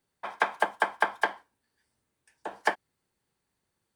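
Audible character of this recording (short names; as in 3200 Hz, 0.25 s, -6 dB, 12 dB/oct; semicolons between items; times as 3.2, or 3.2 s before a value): noise floor -82 dBFS; spectral tilt +1.0 dB/oct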